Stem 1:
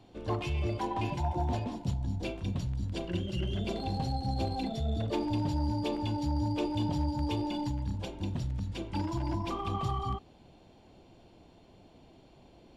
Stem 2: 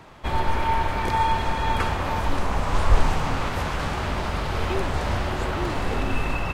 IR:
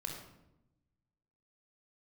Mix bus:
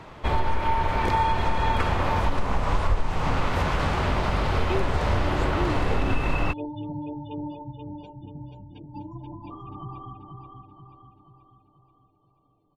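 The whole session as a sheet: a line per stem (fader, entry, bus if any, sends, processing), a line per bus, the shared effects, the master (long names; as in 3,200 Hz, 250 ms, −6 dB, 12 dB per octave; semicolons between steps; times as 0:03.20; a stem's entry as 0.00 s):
−6.5 dB, 0.00 s, no send, echo send −5 dB, gate on every frequency bin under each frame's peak −20 dB strong; comb filter 6.8 ms, depth 99%; expander for the loud parts 1.5 to 1, over −48 dBFS
+2.0 dB, 0.00 s, send −13 dB, no echo send, notch filter 1,600 Hz, Q 29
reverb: on, RT60 0.90 s, pre-delay 23 ms
echo: repeating echo 483 ms, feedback 51%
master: high-shelf EQ 6,500 Hz −9.5 dB; downward compressor 6 to 1, threshold −18 dBFS, peak gain reduction 12.5 dB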